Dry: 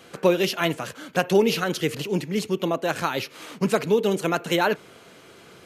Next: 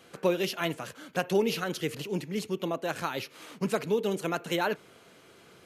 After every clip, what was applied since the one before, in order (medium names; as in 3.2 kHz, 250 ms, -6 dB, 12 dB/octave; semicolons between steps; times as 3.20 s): peaking EQ 11 kHz +2.5 dB 0.32 oct; trim -7 dB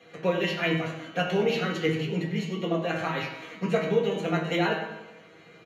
feedback comb 160 Hz, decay 0.21 s, harmonics all, mix 90%; feedback delay 97 ms, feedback 54%, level -13 dB; reverberation RT60 0.85 s, pre-delay 3 ms, DRR 0 dB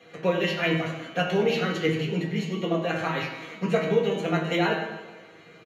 feedback delay 156 ms, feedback 52%, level -17.5 dB; trim +1.5 dB